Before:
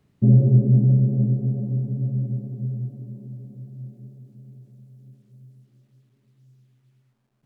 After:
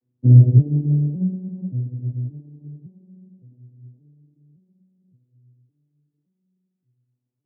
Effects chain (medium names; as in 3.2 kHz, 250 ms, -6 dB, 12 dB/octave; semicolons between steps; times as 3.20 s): vocoder on a broken chord minor triad, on B2, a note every 568 ms; peaking EQ 280 Hz +10.5 dB 1.6 oct; upward expansion 1.5:1, over -30 dBFS